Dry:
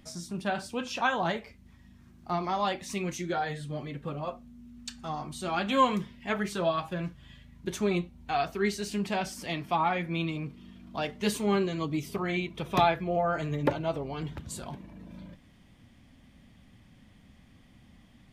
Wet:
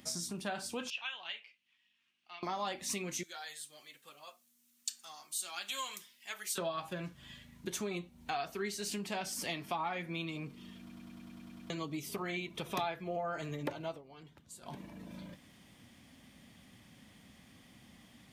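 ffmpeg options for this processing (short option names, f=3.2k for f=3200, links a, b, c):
-filter_complex "[0:a]asettb=1/sr,asplit=3[a][b][c];[a]atrim=end=0.904[d];[b]atrim=start=0.9:end=2.43,asetpts=PTS-STARTPTS,afade=t=in:d=0.004:c=qsin,afade=t=out:st=1.526:d=0.004:c=qsin,bandpass=f=2.8k:t=q:w=5.2[e];[c]atrim=start=2.426[f];[d][e]acrossfade=d=0.004:c1=hsin:c2=qsin[g];[g][f]acrossfade=d=0.004:c1=qsin:c2=hsin,asettb=1/sr,asplit=3[h][i][j];[h]atrim=end=3.234[k];[i]atrim=start=3.23:end=6.58,asetpts=PTS-STARTPTS,afade=t=in:d=0.004:c=qsin,afade=t=out:st=3.346:d=0.004:c=qsin,aderivative[l];[j]atrim=start=6.576[m];[k][l]acrossfade=d=0.004:c1=hsin:c2=qsin[n];[n][m]acrossfade=d=0.004:c1=qsin:c2=hsin,asplit=12[o][p][q][r][s][t][u][v][w][x][y][z];[o]atrim=end=10.902[aa];[p]atrim=start=10.798:end=10.902[ab];[q]atrim=start=10.798:end=10.902[ac];[r]atrim=start=10.798:end=10.902[ad];[s]atrim=start=10.798:end=10.902[ae];[t]atrim=start=10.798:end=10.902[af];[u]atrim=start=10.798:end=10.902[ag];[v]atrim=start=10.798:end=10.902[ah];[w]atrim=start=10.798:end=10.902[ai];[x]atrim=start=11.698:end=14.02,asetpts=PTS-STARTPTS,afade=t=out:st=2.142:d=0.18:silence=0.125893[aj];[y]atrim=start=14.02:end=14.61,asetpts=PTS-STARTPTS,volume=-18dB[ak];[z]atrim=start=14.61,asetpts=PTS-STARTPTS,afade=t=in:d=0.18:silence=0.125893[al];[aa][ab]acrossfade=d=0.004:c1=hsin:c2=hsin[am];[am][ac]acrossfade=d=0.004:c1=hsin:c2=hsin[an];[an][ad]acrossfade=d=0.004:c1=hsin:c2=hsin[ao];[ao][ae]acrossfade=d=0.004:c1=hsin:c2=hsin[ap];[ap][af]acrossfade=d=0.004:c1=hsin:c2=hsin[aq];[aq][ag]acrossfade=d=0.004:c1=hsin:c2=hsin[ar];[ar][ah]acrossfade=d=0.004:c1=hsin:c2=hsin[as];[as][ai]acrossfade=d=0.004:c1=hsin:c2=hsin[at];[aj][ak][al]concat=n=3:v=0:a=1[au];[at][au]acrossfade=d=0.004:c1=hsin:c2=hsin,acompressor=threshold=-38dB:ratio=3,highpass=f=200:p=1,highshelf=f=4.7k:g=8.5,volume=1dB"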